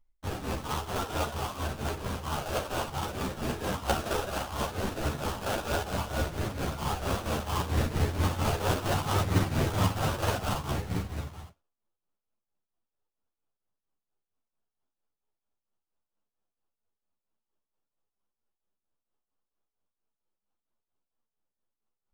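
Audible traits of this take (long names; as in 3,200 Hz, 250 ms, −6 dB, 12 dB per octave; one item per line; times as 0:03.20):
phaser sweep stages 6, 0.66 Hz, lowest notch 240–1,100 Hz
aliases and images of a low sample rate 2,100 Hz, jitter 20%
tremolo triangle 4.4 Hz, depth 80%
a shimmering, thickened sound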